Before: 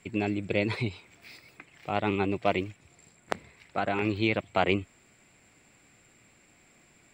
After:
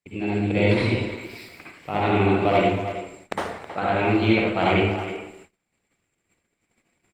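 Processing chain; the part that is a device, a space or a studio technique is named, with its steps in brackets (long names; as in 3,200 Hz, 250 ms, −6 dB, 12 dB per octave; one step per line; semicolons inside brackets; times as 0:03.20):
speakerphone in a meeting room (convolution reverb RT60 0.85 s, pre-delay 53 ms, DRR −6 dB; far-end echo of a speakerphone 320 ms, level −10 dB; automatic gain control gain up to 8.5 dB; noise gate −41 dBFS, range −27 dB; level −4.5 dB; Opus 24 kbit/s 48,000 Hz)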